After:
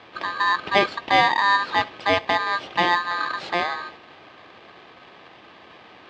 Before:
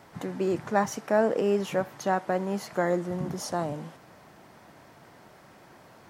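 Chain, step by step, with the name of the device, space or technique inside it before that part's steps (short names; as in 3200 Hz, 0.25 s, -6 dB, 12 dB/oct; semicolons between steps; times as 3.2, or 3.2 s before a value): ring modulator pedal into a guitar cabinet (polarity switched at an audio rate 1400 Hz; speaker cabinet 110–3700 Hz, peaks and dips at 330 Hz +5 dB, 1500 Hz -3 dB, 2100 Hz -6 dB); gain +8 dB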